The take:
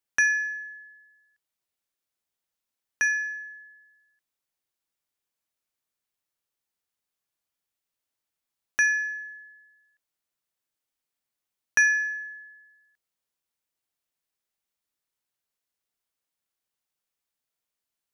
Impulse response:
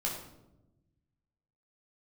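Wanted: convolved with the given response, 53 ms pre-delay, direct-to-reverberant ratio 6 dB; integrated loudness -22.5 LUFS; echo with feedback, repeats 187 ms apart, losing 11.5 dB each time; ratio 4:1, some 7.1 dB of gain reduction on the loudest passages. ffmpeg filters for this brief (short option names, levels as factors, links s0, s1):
-filter_complex "[0:a]acompressor=threshold=0.0501:ratio=4,aecho=1:1:187|374|561:0.266|0.0718|0.0194,asplit=2[s0][s1];[1:a]atrim=start_sample=2205,adelay=53[s2];[s1][s2]afir=irnorm=-1:irlink=0,volume=0.316[s3];[s0][s3]amix=inputs=2:normalize=0,volume=2.37"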